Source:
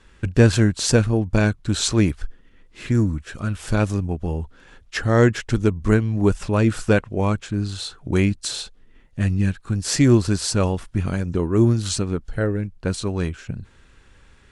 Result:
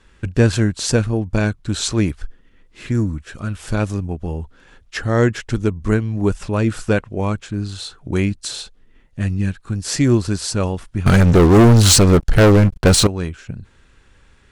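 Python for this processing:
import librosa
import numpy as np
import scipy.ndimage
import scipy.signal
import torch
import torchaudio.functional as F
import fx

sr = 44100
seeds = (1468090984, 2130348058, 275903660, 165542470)

y = fx.leveller(x, sr, passes=5, at=(11.06, 13.07))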